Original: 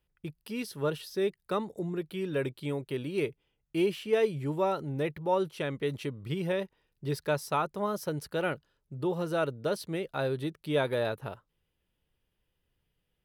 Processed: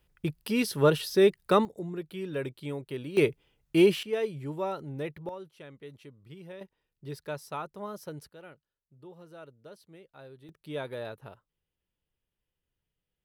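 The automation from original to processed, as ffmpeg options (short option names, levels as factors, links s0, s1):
-af "asetnsamples=n=441:p=0,asendcmd='1.65 volume volume -2.5dB;3.17 volume volume 7dB;4.03 volume volume -4dB;5.29 volume volume -14.5dB;6.61 volume volume -7.5dB;8.29 volume volume -18.5dB;10.49 volume volume -8dB',volume=2.66"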